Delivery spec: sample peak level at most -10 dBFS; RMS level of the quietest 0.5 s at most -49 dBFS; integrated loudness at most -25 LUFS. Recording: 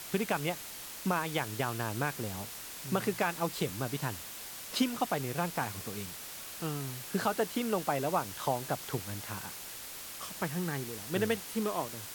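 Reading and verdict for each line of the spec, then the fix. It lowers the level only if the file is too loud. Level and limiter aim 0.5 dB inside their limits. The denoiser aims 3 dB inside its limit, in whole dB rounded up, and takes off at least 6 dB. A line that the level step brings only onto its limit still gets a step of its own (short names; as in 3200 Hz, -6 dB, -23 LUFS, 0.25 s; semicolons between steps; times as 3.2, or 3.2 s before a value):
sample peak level -16.5 dBFS: OK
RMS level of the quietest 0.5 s -44 dBFS: fail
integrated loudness -34.5 LUFS: OK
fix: denoiser 8 dB, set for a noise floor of -44 dBFS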